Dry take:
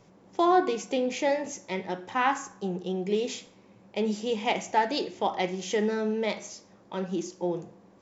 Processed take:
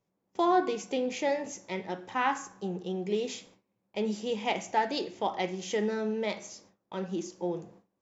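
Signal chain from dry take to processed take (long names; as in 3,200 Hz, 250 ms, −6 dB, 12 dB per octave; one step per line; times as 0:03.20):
noise gate with hold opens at −42 dBFS
level −3 dB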